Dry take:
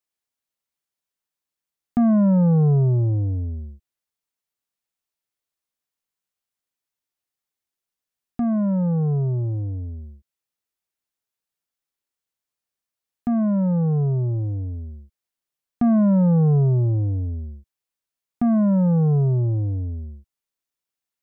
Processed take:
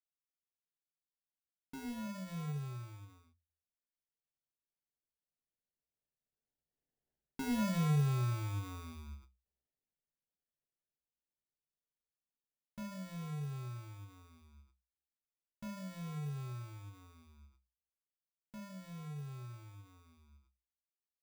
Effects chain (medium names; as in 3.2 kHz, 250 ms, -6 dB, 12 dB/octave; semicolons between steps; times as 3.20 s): Doppler pass-by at 7.67 s, 41 m/s, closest 5 m; reverse; compression 5:1, threshold -44 dBFS, peak gain reduction 20 dB; reverse; sample-rate reducer 1.2 kHz, jitter 0%; reverberation RT60 0.25 s, pre-delay 5 ms, DRR 7 dB; endings held to a fixed fall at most 170 dB/s; trim +7 dB